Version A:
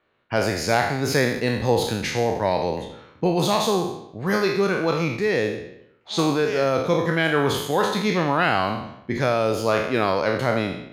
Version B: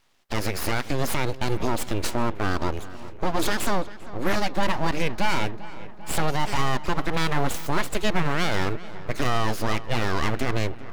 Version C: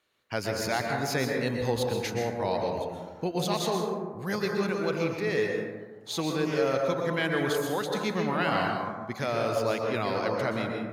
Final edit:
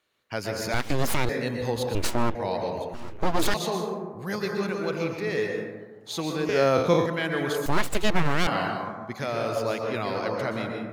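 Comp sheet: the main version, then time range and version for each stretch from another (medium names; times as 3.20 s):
C
0.74–1.29 s: from B
1.95–2.35 s: from B
2.94–3.54 s: from B
6.49–7.06 s: from A
7.66–8.47 s: from B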